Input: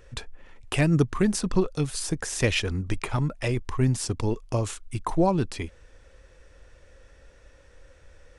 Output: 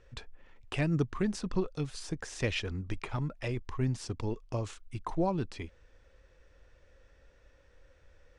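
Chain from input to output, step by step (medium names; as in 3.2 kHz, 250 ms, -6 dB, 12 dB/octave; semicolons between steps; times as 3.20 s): low-pass 5.8 kHz 12 dB/octave; trim -8 dB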